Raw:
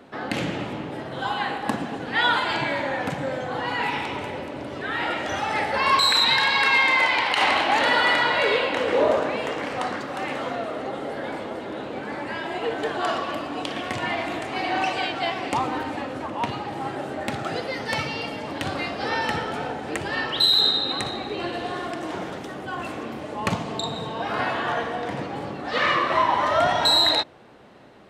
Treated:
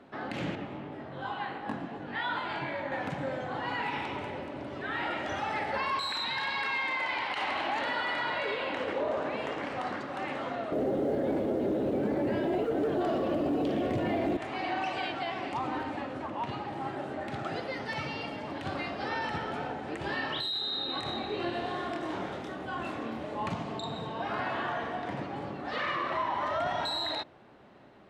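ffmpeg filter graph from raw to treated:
-filter_complex "[0:a]asettb=1/sr,asplit=3[a][b][c];[a]atrim=end=0.554[d];[b]atrim=start=0.55:end=2.92,asetpts=PTS-STARTPTS,afade=t=in:d=0.004:c=qsin,afade=t=out:st=2.366:d=0.004:c=qsin,highshelf=f=5.2k:g=-9.5,flanger=delay=19.5:depth=2.9:speed=2.7[e];[c]atrim=start=2.916[f];[d][e]acrossfade=d=0.004:c1=hsin:c2=qsin[g];[g][f]acrossfade=d=0.004:c1=qsin:c2=hsin,asettb=1/sr,asplit=3[h][i][j];[h]atrim=end=10.724[k];[i]atrim=start=10.72:end=14.37,asetpts=PTS-STARTPTS,afade=t=in:d=0.004:c=qsin,afade=t=out:st=3.646:d=0.004:c=qsin,lowshelf=f=710:t=q:w=1.5:g=12,acontrast=80,acrusher=bits=8:mode=log:mix=0:aa=0.000001[l];[j]atrim=start=14.366[m];[k][l]acrossfade=d=0.004:c1=hsin:c2=qsin[n];[n][m]acrossfade=d=0.004:c1=qsin:c2=hsin,asettb=1/sr,asplit=3[o][p][q];[o]atrim=end=19.994[r];[p]atrim=start=19.99:end=23.49,asetpts=PTS-STARTPTS,afade=t=in:d=0.004:c=qsin,afade=t=out:st=3.496:d=0.004:c=qsin,equalizer=f=3.7k:t=o:w=0.24:g=3.5,asplit=2[s][t];[t]adelay=26,volume=-3dB[u];[s][u]amix=inputs=2:normalize=0,atrim=end_sample=154350[v];[q]atrim=start=23.486[w];[r][v]acrossfade=d=0.004:c1=hsin:c2=qsin[x];[x][w]acrossfade=d=0.004:c1=qsin:c2=hsin,alimiter=limit=-17dB:level=0:latency=1:release=58,lowpass=f=3.3k:p=1,bandreject=f=480:w=12,volume=-5.5dB"

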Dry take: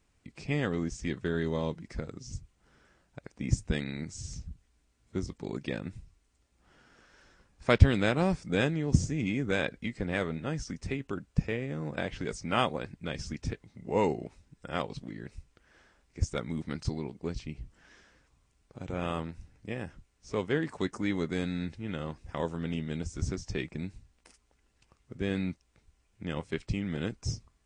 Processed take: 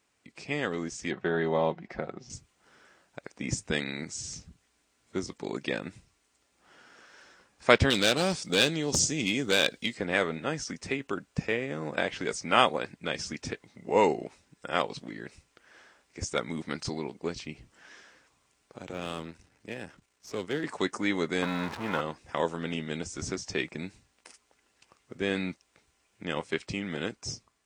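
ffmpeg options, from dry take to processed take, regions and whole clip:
-filter_complex "[0:a]asettb=1/sr,asplit=3[a][b][c];[a]atrim=end=1.114[d];[b]atrim=start=1.11:end=2.3,asetpts=PTS-STARTPTS,afade=t=in:d=0.004:c=qsin,afade=t=out:st=1.186:d=0.004:c=qsin,lowpass=2.7k,equalizer=f=730:t=o:w=0.39:g=10.5,aecho=1:1:5.4:0.33,atrim=end_sample=52479[e];[c]atrim=start=2.296[f];[d][e]acrossfade=d=0.004:c1=hsin:c2=qsin[g];[g][f]acrossfade=d=0.004:c1=qsin:c2=hsin,asettb=1/sr,asplit=3[h][i][j];[h]atrim=end=7.904[k];[i]atrim=start=7.9:end=9.95,asetpts=PTS-STARTPTS,afade=t=in:d=0.004:c=qsin,afade=t=out:st=2.046:d=0.004:c=qsin,asoftclip=type=hard:threshold=-22dB,highshelf=f=2.7k:t=q:w=1.5:g=7.5[l];[j]atrim=start=9.946[m];[k][l]acrossfade=d=0.004:c1=hsin:c2=qsin[n];[n][m]acrossfade=d=0.004:c1=qsin:c2=hsin,asettb=1/sr,asplit=3[o][p][q];[o]atrim=end=18.814[r];[p]atrim=start=18.81:end=20.64,asetpts=PTS-STARTPTS,afade=t=in:d=0.004:c=qsin,afade=t=out:st=1.826:d=0.004:c=qsin,aeval=exprs='if(lt(val(0),0),0.447*val(0),val(0))':c=same,acrossover=split=400|3000[s][t][u];[t]acompressor=threshold=-48dB:ratio=2:attack=3.2:release=140:knee=2.83:detection=peak[v];[s][v][u]amix=inputs=3:normalize=0[w];[q]atrim=start=20.636[x];[r][w]acrossfade=d=0.004:c1=hsin:c2=qsin[y];[y][x]acrossfade=d=0.004:c1=qsin:c2=hsin,asettb=1/sr,asplit=3[z][aa][ab];[z]atrim=end=21.424[ac];[aa]atrim=start=21.42:end=22.01,asetpts=PTS-STARTPTS,afade=t=in:d=0.004:c=qsin,afade=t=out:st=0.586:d=0.004:c=qsin,aeval=exprs='val(0)+0.5*0.0119*sgn(val(0))':c=same,lowpass=f=2.9k:p=1,equalizer=f=1k:t=o:w=0.87:g=12[ad];[ab]atrim=start=22.006[ae];[ac][ad]acrossfade=d=0.004:c1=hsin:c2=qsin[af];[af][ae]acrossfade=d=0.004:c1=qsin:c2=hsin,lowshelf=f=220:g=-12,dynaudnorm=f=310:g=7:m=4dB,highpass=f=150:p=1,volume=3dB"

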